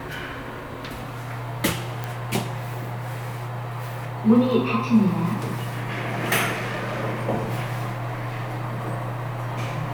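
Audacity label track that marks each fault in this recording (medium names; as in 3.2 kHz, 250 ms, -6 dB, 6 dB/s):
2.040000	2.040000	pop
6.520000	7.010000	clipped -24.5 dBFS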